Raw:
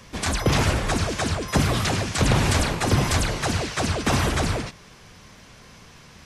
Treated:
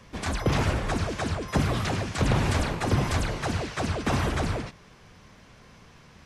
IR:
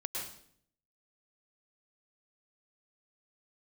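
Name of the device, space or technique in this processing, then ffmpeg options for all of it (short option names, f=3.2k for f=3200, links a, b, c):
behind a face mask: -af "highshelf=f=3.5k:g=-8,volume=-3.5dB"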